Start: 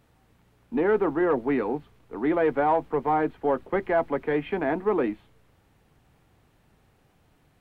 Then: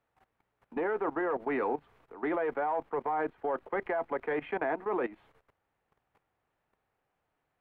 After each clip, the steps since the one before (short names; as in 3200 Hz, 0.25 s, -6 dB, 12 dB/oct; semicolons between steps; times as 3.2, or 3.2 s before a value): three-band isolator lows -13 dB, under 450 Hz, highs -12 dB, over 2500 Hz; level quantiser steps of 17 dB; gain +4 dB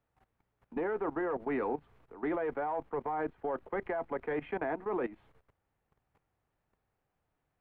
low shelf 230 Hz +10.5 dB; gain -4.5 dB